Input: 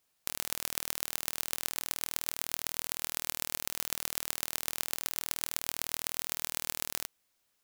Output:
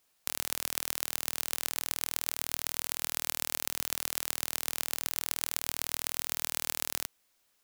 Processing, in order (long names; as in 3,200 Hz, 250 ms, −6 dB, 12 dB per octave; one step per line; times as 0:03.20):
parametric band 120 Hz −3.5 dB 1.5 octaves
in parallel at −2.5 dB: brickwall limiter −12.5 dBFS, peak gain reduction 10 dB
on the sum: level −1 dB